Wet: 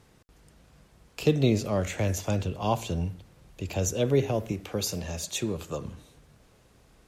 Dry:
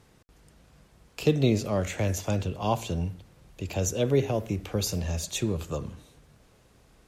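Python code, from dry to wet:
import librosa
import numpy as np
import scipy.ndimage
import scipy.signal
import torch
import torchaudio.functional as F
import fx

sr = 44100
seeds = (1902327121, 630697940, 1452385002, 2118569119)

y = fx.highpass(x, sr, hz=170.0, slope=6, at=(4.52, 5.85))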